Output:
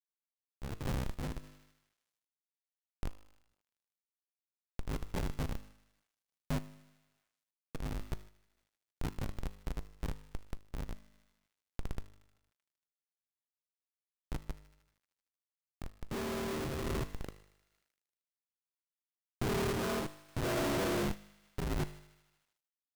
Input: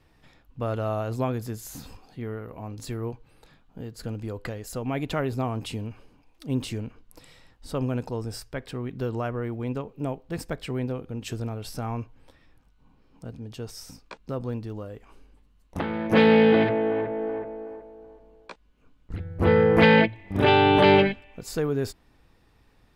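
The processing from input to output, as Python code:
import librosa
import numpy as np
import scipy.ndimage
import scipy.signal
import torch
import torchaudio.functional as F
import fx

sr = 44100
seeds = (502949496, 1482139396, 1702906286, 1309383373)

y = fx.partial_stretch(x, sr, pct=77)
y = fx.schmitt(y, sr, flips_db=-23.0)
y = fx.comb_fb(y, sr, f0_hz=51.0, decay_s=0.84, harmonics='all', damping=0.0, mix_pct=50)
y = fx.echo_wet_highpass(y, sr, ms=77, feedback_pct=70, hz=1500.0, wet_db=-16.0)
y = fx.tremolo_random(y, sr, seeds[0], hz=3.5, depth_pct=55)
y = fx.quant_companded(y, sr, bits=8)
y = F.gain(torch.from_numpy(y), 1.0).numpy()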